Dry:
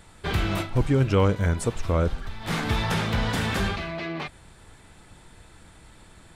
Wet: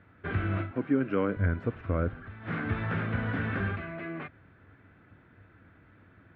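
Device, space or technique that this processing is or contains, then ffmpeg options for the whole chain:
bass cabinet: -filter_complex "[0:a]highpass=88,equalizer=frequency=98:width_type=q:width=4:gain=9,equalizer=frequency=270:width_type=q:width=4:gain=7,equalizer=frequency=880:width_type=q:width=4:gain=-8,equalizer=frequency=1500:width_type=q:width=4:gain=6,lowpass=frequency=2300:width=0.5412,lowpass=frequency=2300:width=1.3066,asettb=1/sr,asplit=3[link_01][link_02][link_03];[link_01]atrim=end=0.714[link_04];[link_02]atrim=start=0.71:end=1.37,asetpts=PTS-STARTPTS,afade=type=in:duration=0.004:curve=qsin,afade=type=out:start_time=0.656:duration=0.004:curve=qsin,highpass=frequency=180:width=0.5412,highpass=frequency=180:width=1.3066[link_05];[link_03]atrim=start=1.366[link_06];[link_04][link_05]acrossfade=duration=0.004:curve1=hsin:curve2=qsin[link_07];[link_07][link_06]acrossfade=duration=0.004:curve1=qsin:curve2=hsin,volume=-6.5dB"

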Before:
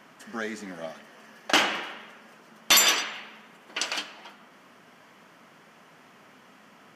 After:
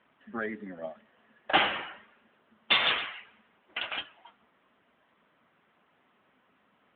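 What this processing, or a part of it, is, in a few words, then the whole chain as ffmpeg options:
mobile call with aggressive noise cancelling: -filter_complex "[0:a]asplit=3[link_01][link_02][link_03];[link_01]afade=type=out:start_time=1.19:duration=0.02[link_04];[link_02]adynamicequalizer=threshold=0.00794:dfrequency=800:dqfactor=6.6:tfrequency=800:tqfactor=6.6:attack=5:release=100:ratio=0.375:range=3.5:mode=boostabove:tftype=bell,afade=type=in:start_time=1.19:duration=0.02,afade=type=out:start_time=1.62:duration=0.02[link_05];[link_03]afade=type=in:start_time=1.62:duration=0.02[link_06];[link_04][link_05][link_06]amix=inputs=3:normalize=0,highpass=frequency=130:poles=1,afftdn=noise_reduction=12:noise_floor=-37" -ar 8000 -c:a libopencore_amrnb -b:a 10200

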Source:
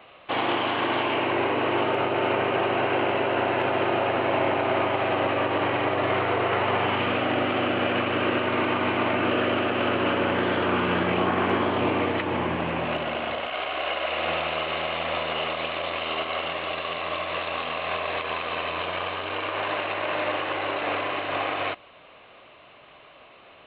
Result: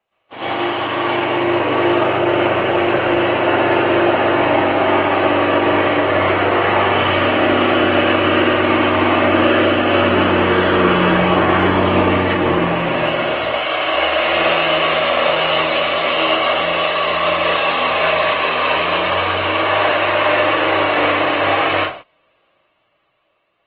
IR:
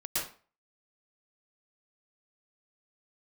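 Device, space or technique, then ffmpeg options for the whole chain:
speakerphone in a meeting room: -filter_complex "[1:a]atrim=start_sample=2205[link_01];[0:a][link_01]afir=irnorm=-1:irlink=0,dynaudnorm=framelen=340:gausssize=9:maxgain=9dB,agate=range=-21dB:threshold=-31dB:ratio=16:detection=peak" -ar 48000 -c:a libopus -b:a 20k

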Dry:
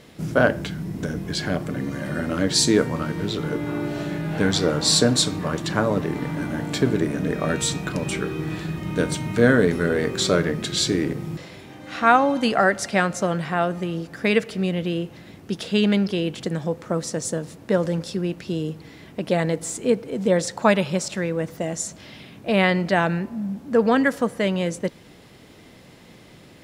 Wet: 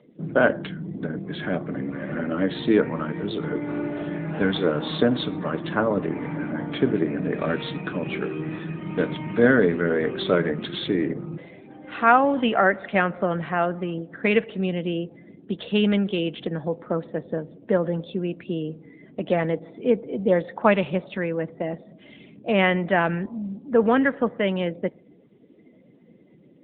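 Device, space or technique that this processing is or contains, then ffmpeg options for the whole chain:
mobile call with aggressive noise cancelling: -filter_complex "[0:a]asettb=1/sr,asplit=3[link_01][link_02][link_03];[link_01]atrim=end=16.014[link_04];[link_02]atrim=start=16.01:end=16.52,asetpts=PTS-STARTPTS,afade=type=in:duration=0.004:curve=qsin,afade=type=out:start_time=0.506:duration=0.004:curve=qsin,aemphasis=mode=production:type=cd[link_05];[link_03]atrim=start=16.516[link_06];[link_04][link_05]acrossfade=duration=0.004:curve1=hsin:curve2=qsin[link_07];[link_07][link_06]acrossfade=duration=0.004:curve1=qsin:curve2=hsin,asplit=3[link_08][link_09][link_10];[link_08]afade=type=out:start_time=21.57:duration=0.02[link_11];[link_09]highpass=89,afade=type=in:start_time=21.57:duration=0.02,afade=type=out:start_time=22.33:duration=0.02[link_12];[link_10]afade=type=in:start_time=22.33:duration=0.02[link_13];[link_11][link_12][link_13]amix=inputs=3:normalize=0,highpass=170,afftdn=noise_reduction=19:noise_floor=-43" -ar 8000 -c:a libopencore_amrnb -b:a 10200

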